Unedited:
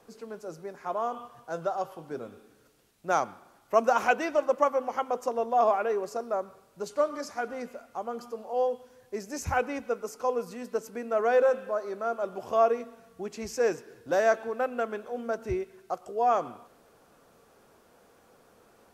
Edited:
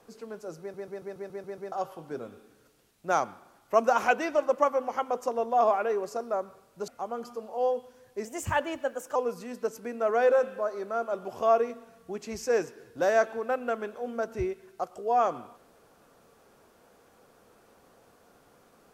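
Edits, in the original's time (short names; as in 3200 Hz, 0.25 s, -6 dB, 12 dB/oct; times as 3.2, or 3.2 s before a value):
0.6 stutter in place 0.14 s, 8 plays
6.88–7.84 cut
9.21–10.26 speed 116%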